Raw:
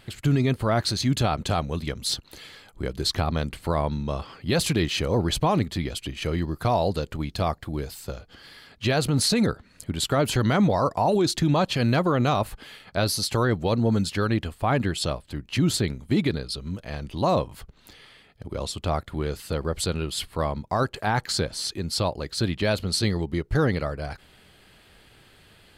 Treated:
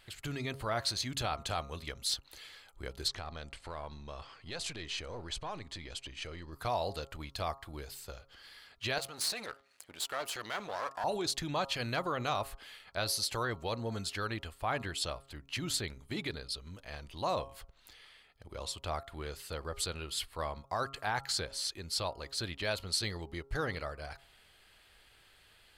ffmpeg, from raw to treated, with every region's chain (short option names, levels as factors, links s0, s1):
-filter_complex "[0:a]asettb=1/sr,asplit=3[s0][s1][s2];[s0]atrim=end=3.084[s3];[s1]atrim=start=3.08:end=6.53,asetpts=PTS-STARTPTS,afade=t=in:d=0.004:c=qsin,afade=t=out:st=3.446:d=0.004:c=qsin,aeval=exprs='if(lt(val(0),0),0.708*val(0),val(0))':c=same,lowpass=f=8900:w=0.5412,lowpass=f=8900:w=1.3066,acompressor=threshold=0.0398:ratio=2.5:attack=3.2:release=140:knee=1:detection=peak[s4];[s2]atrim=start=6.526[s5];[s3][s4]acrossfade=d=0.004:c1=hsin:c2=qsin[s6];[s6][s5]acrossfade=d=0.004:c1=qsin:c2=hsin,asettb=1/sr,asplit=3[s7][s8][s9];[s7]atrim=end=8.984[s10];[s8]atrim=start=8.98:end=11.04,asetpts=PTS-STARTPTS,afade=t=in:d=0.004:c=qsin,afade=t=out:st=2.056:d=0.004:c=qsin,aeval=exprs='if(lt(val(0),0),0.251*val(0),val(0))':c=same,highpass=f=480:p=1[s11];[s9]atrim=start=11.036[s12];[s10][s11]acrossfade=d=0.004:c1=hsin:c2=qsin[s13];[s13][s12]acrossfade=d=0.004:c1=qsin:c2=hsin,equalizer=f=190:t=o:w=2.6:g=-13,bandreject=f=136.5:t=h:w=4,bandreject=f=273:t=h:w=4,bandreject=f=409.5:t=h:w=4,bandreject=f=546:t=h:w=4,bandreject=f=682.5:t=h:w=4,bandreject=f=819:t=h:w=4,bandreject=f=955.5:t=h:w=4,bandreject=f=1092:t=h:w=4,bandreject=f=1228.5:t=h:w=4,bandreject=f=1365:t=h:w=4,volume=0.501"